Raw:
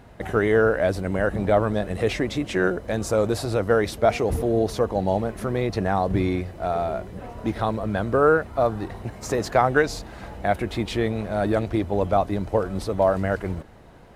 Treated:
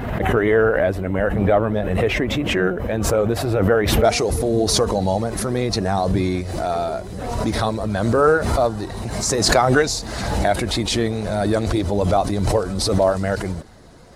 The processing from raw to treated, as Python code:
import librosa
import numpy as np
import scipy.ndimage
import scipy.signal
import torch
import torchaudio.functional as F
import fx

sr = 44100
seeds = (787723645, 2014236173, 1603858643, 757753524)

y = fx.spec_quant(x, sr, step_db=15)
y = fx.band_shelf(y, sr, hz=6400.0, db=fx.steps((0.0, -8.0), (4.03, 10.0)), octaves=1.7)
y = fx.pre_swell(y, sr, db_per_s=34.0)
y = y * librosa.db_to_amplitude(2.5)